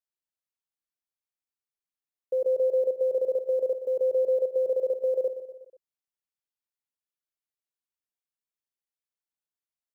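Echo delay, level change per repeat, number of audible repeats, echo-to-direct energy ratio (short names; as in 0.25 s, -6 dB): 0.122 s, -5.0 dB, 4, -10.5 dB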